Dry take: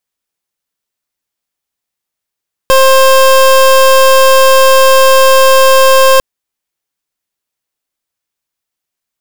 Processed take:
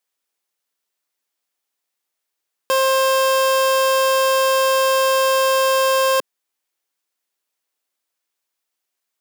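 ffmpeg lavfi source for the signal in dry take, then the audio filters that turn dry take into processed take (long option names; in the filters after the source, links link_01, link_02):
-f lavfi -i "aevalsrc='0.562*(2*lt(mod(530*t,1),0.26)-1)':duration=3.5:sample_rate=44100"
-af "highpass=300,alimiter=limit=-8.5dB:level=0:latency=1:release=55"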